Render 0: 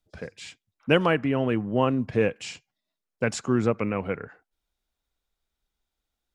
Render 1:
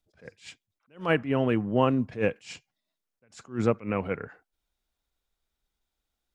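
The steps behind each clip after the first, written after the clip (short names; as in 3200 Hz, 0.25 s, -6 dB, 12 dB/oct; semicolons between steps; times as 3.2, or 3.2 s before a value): attack slew limiter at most 200 dB/s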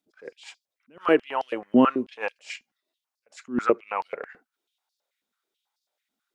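stepped high-pass 9.2 Hz 240–4700 Hz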